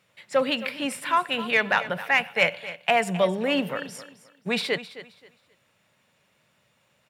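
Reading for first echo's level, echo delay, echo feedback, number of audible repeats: -15.0 dB, 0.264 s, 25%, 2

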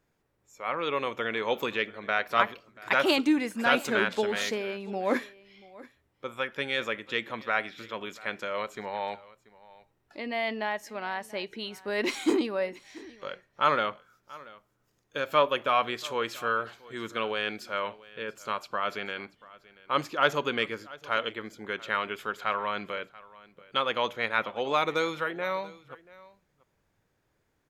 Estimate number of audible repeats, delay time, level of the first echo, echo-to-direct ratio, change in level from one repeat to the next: 1, 0.684 s, -21.0 dB, -21.0 dB, no steady repeat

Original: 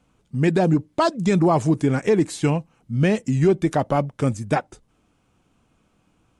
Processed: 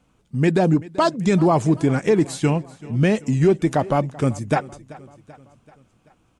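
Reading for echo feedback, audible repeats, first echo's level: 56%, 3, -20.5 dB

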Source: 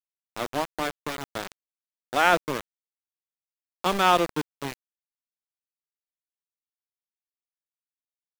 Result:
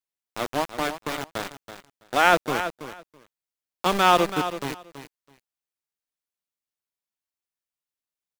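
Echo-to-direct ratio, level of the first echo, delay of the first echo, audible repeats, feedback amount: -11.0 dB, -11.0 dB, 0.329 s, 2, 16%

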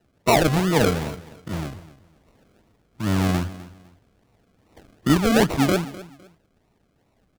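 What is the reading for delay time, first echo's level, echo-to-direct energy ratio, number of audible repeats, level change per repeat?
0.254 s, -17.5 dB, -17.0 dB, 2, -11.5 dB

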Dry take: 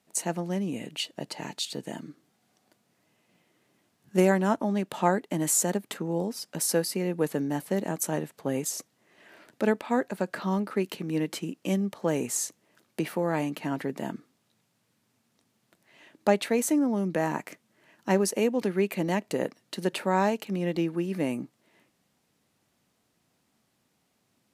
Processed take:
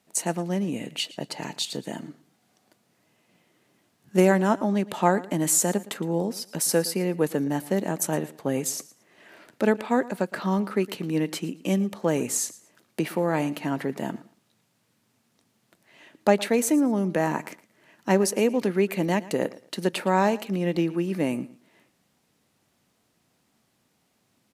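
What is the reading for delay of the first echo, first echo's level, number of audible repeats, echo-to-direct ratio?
0.114 s, -19.0 dB, 2, -19.0 dB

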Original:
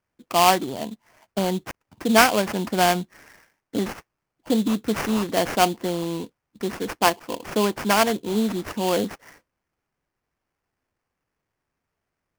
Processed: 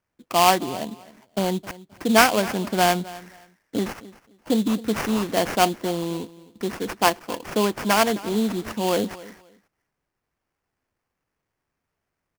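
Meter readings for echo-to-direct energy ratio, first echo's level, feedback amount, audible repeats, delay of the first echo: -19.0 dB, -19.0 dB, 21%, 2, 0.263 s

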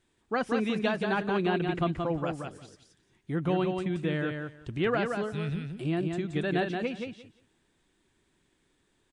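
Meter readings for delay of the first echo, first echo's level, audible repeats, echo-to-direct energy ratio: 0.176 s, -5.0 dB, 2, -5.0 dB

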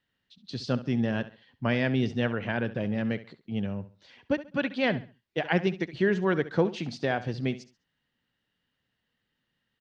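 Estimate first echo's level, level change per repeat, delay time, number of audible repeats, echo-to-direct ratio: -15.0 dB, -11.0 dB, 68 ms, 2, -14.5 dB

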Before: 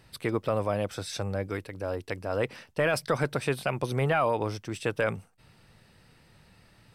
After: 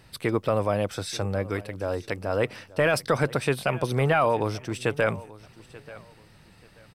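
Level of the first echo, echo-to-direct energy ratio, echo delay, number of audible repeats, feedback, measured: -19.5 dB, -19.0 dB, 0.885 s, 2, 25%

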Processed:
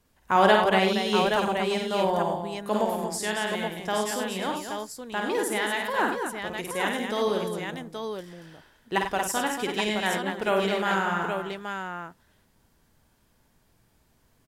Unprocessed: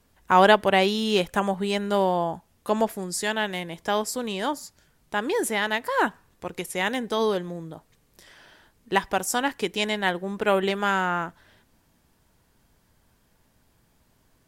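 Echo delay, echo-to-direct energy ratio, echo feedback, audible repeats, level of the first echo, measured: 52 ms, 0.0 dB, no steady repeat, 5, -4.5 dB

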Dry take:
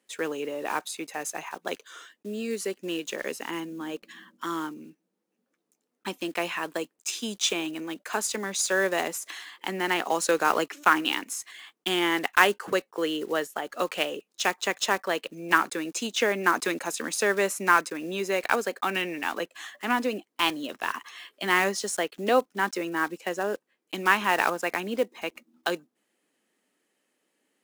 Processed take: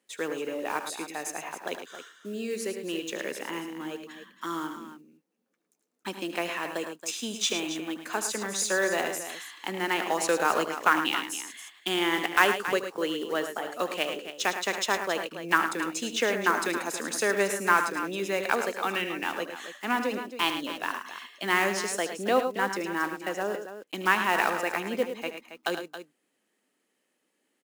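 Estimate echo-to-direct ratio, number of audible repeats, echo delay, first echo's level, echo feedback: -6.5 dB, 3, 76 ms, -13.0 dB, no steady repeat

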